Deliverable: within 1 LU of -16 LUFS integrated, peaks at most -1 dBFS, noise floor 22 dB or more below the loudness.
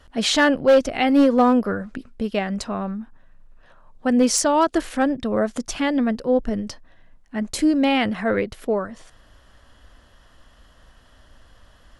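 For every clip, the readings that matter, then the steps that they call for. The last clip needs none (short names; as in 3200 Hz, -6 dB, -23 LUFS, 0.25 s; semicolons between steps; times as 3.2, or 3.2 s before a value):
clipped 0.7%; flat tops at -9.5 dBFS; loudness -20.5 LUFS; peak -9.5 dBFS; loudness target -16.0 LUFS
-> clip repair -9.5 dBFS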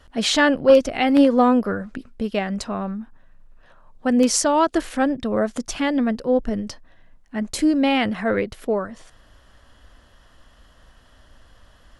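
clipped 0.0%; loudness -20.5 LUFS; peak -2.5 dBFS; loudness target -16.0 LUFS
-> gain +4.5 dB; limiter -1 dBFS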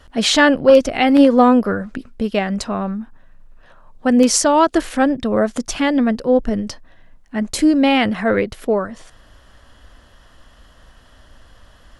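loudness -16.0 LUFS; peak -1.0 dBFS; noise floor -49 dBFS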